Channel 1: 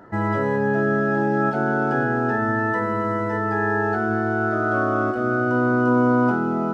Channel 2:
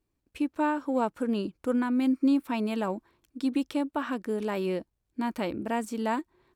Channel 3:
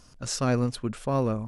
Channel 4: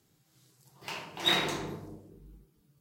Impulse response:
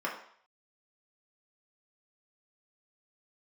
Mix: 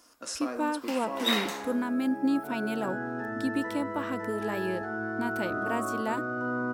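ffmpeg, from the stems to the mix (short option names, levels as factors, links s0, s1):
-filter_complex "[0:a]adelay=900,volume=0.178,asplit=2[s0][s1];[s1]volume=0.316[s2];[1:a]volume=0.708[s3];[2:a]highpass=f=250:w=0.5412,highpass=f=250:w=1.3066,acompressor=threshold=0.0251:ratio=4,volume=0.447,asplit=3[s4][s5][s6];[s5]volume=0.562[s7];[3:a]highpass=620,volume=0.631,asplit=2[s8][s9];[s9]volume=0.335[s10];[s6]apad=whole_len=336880[s11];[s0][s11]sidechaincompress=threshold=0.00141:ratio=8:attack=16:release=1300[s12];[4:a]atrim=start_sample=2205[s13];[s2][s7][s10]amix=inputs=3:normalize=0[s14];[s14][s13]afir=irnorm=-1:irlink=0[s15];[s12][s3][s4][s8][s15]amix=inputs=5:normalize=0,highshelf=f=8400:g=8.5"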